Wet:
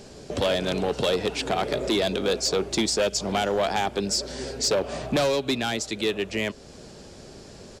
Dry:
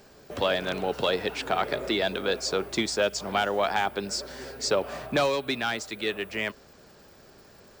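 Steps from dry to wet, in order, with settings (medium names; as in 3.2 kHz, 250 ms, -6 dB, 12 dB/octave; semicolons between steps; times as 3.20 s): peaking EQ 1.4 kHz -10 dB 1.9 oct; in parallel at +1 dB: compression 4:1, threshold -44 dBFS, peak gain reduction 17.5 dB; on the sum: hard clipper -24 dBFS, distortion -13 dB; resampled via 32 kHz; trim +5.5 dB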